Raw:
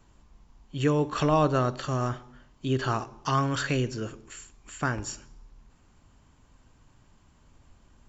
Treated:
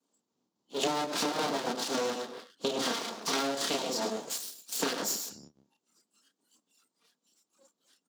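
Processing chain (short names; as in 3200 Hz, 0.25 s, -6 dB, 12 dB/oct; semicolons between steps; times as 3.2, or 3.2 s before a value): minimum comb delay 4.3 ms; chopper 3.6 Hz, depth 60%, duty 65%; tilt shelf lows +6 dB, about 1100 Hz; notch 680 Hz, Q 16; on a send: loudspeakers at several distances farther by 10 m 0 dB, 36 m -9 dB, 47 m -9 dB; on the sum: spectral noise reduction 29 dB; full-wave rectifier; HPF 210 Hz 24 dB/oct; resonant high shelf 3000 Hz +10 dB, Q 1.5; compressor 10:1, threshold -37 dBFS, peak gain reduction 18 dB; gain +9 dB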